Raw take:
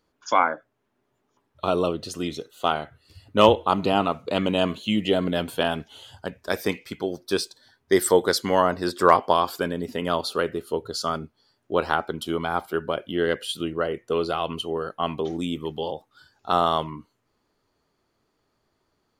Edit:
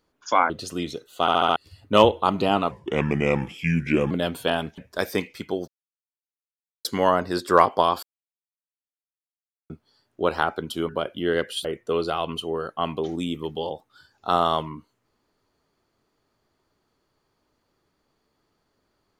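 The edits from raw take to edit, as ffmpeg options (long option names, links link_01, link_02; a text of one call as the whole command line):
ffmpeg -i in.wav -filter_complex "[0:a]asplit=16[link_01][link_02][link_03][link_04][link_05][link_06][link_07][link_08][link_09][link_10][link_11][link_12][link_13][link_14][link_15][link_16];[link_01]atrim=end=0.502[link_17];[link_02]atrim=start=1.938:end=2.722[link_18];[link_03]atrim=start=2.648:end=2.722[link_19];[link_04]atrim=start=2.648:end=2.722[link_20];[link_05]atrim=start=2.648:end=2.722[link_21];[link_06]atrim=start=2.648:end=2.722[link_22];[link_07]atrim=start=2.998:end=4.154[link_23];[link_08]atrim=start=4.15:end=5.24,asetpts=PTS-STARTPTS,asetrate=34398,aresample=44100[link_24];[link_09]atrim=start=5.236:end=5.912[link_25];[link_10]atrim=start=6.288:end=7.19,asetpts=PTS-STARTPTS,afade=type=out:start_time=0.898:duration=0.004:curve=hsin[link_26];[link_11]atrim=start=7.19:end=8.36,asetpts=PTS-STARTPTS,volume=0[link_27];[link_12]atrim=start=8.36:end=9.54,asetpts=PTS-STARTPTS,afade=type=in:duration=0.004:curve=hsin,afade=type=out:start_time=1.176:duration=0.004:curve=hsin[link_28];[link_13]atrim=start=9.54:end=11.21,asetpts=PTS-STARTPTS,volume=0[link_29];[link_14]atrim=start=11.21:end=12.402,asetpts=PTS-STARTPTS,afade=type=in:duration=0.004:curve=hsin[link_30];[link_15]atrim=start=12.808:end=13.572[link_31];[link_16]atrim=start=13.858[link_32];[link_17][link_18]acrossfade=duration=0.004:curve1=hsin:curve2=hsin[link_33];[link_33][link_19]acrossfade=duration=0.004:curve1=hsin:curve2=hsin[link_34];[link_34][link_20]acrossfade=duration=0.004:curve1=hsin:curve2=hsin[link_35];[link_35][link_21]acrossfade=duration=0.004:curve1=hsin:curve2=hsin[link_36];[link_36][link_22]acrossfade=duration=0.004:curve1=hsin:curve2=hsin[link_37];[link_37][link_23]acrossfade=duration=0.004:curve1=hsin:curve2=hsin[link_38];[link_38][link_24]acrossfade=duration=0.004:curve1=hsin:curve2=hsin[link_39];[link_39][link_25]acrossfade=duration=0.004:curve1=hsin:curve2=hsin[link_40];[link_26][link_27][link_28][link_29][link_30]concat=n=5:v=0:a=1[link_41];[link_40][link_41]acrossfade=duration=0.004:curve1=hsin:curve2=hsin[link_42];[link_42][link_31]acrossfade=duration=0.004:curve1=hsin:curve2=hsin[link_43];[link_43][link_32]acrossfade=duration=0.004:curve1=hsin:curve2=hsin" out.wav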